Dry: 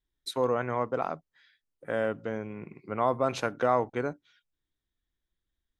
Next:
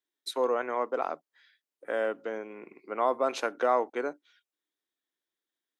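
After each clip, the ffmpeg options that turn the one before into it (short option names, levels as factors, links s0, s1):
-af "highpass=f=290:w=0.5412,highpass=f=290:w=1.3066"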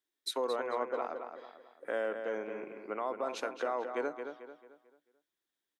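-filter_complex "[0:a]alimiter=level_in=1.06:limit=0.0631:level=0:latency=1:release=492,volume=0.944,asplit=2[s0][s1];[s1]adelay=221,lowpass=f=4000:p=1,volume=0.447,asplit=2[s2][s3];[s3]adelay=221,lowpass=f=4000:p=1,volume=0.4,asplit=2[s4][s5];[s5]adelay=221,lowpass=f=4000:p=1,volume=0.4,asplit=2[s6][s7];[s7]adelay=221,lowpass=f=4000:p=1,volume=0.4,asplit=2[s8][s9];[s9]adelay=221,lowpass=f=4000:p=1,volume=0.4[s10];[s0][s2][s4][s6][s8][s10]amix=inputs=6:normalize=0"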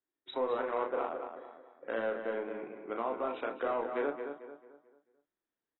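-filter_complex "[0:a]adynamicsmooth=sensitivity=4:basefreq=1800,asplit=2[s0][s1];[s1]adelay=35,volume=0.562[s2];[s0][s2]amix=inputs=2:normalize=0" -ar 22050 -c:a aac -b:a 16k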